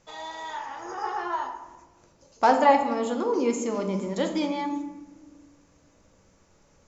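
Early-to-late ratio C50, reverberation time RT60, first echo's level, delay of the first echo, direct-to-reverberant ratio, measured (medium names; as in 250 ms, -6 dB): 7.5 dB, 1.2 s, no echo, no echo, 3.5 dB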